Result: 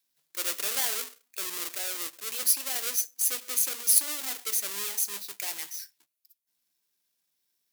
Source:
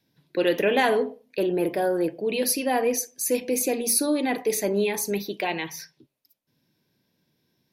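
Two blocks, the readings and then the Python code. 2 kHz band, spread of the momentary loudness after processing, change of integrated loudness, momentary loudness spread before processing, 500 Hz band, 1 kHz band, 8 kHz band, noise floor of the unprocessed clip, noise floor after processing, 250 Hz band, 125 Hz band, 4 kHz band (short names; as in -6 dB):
-9.0 dB, 13 LU, -2.5 dB, 7 LU, -23.0 dB, -14.5 dB, +2.0 dB, -74 dBFS, -79 dBFS, -26.0 dB, under -25 dB, -0.5 dB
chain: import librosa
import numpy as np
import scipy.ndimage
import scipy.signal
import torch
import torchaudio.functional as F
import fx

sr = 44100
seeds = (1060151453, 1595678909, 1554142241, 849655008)

y = fx.halfwave_hold(x, sr)
y = np.diff(y, prepend=0.0)
y = y * 10.0 ** (-2.5 / 20.0)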